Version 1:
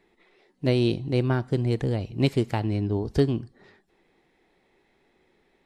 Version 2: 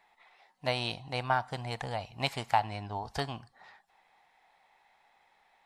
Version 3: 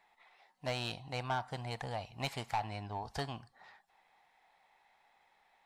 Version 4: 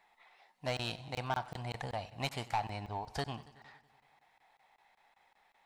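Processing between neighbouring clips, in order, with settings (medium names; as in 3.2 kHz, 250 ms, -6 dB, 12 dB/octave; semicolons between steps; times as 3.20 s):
resonant low shelf 540 Hz -13.5 dB, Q 3
saturation -24.5 dBFS, distortion -9 dB; trim -3 dB
crackling interface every 0.19 s, samples 1024, zero, from 0.77 s; modulated delay 93 ms, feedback 68%, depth 68 cents, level -19.5 dB; trim +1 dB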